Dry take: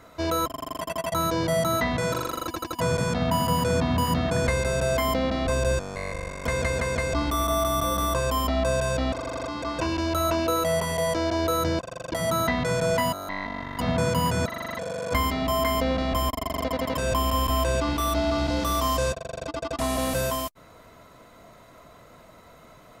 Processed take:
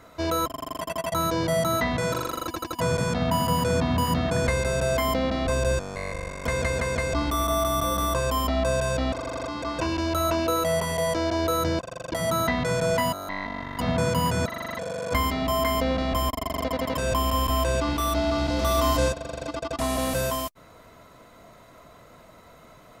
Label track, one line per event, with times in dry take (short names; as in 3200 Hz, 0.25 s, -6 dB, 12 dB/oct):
18.130000	18.620000	echo throw 0.46 s, feedback 20%, level -2.5 dB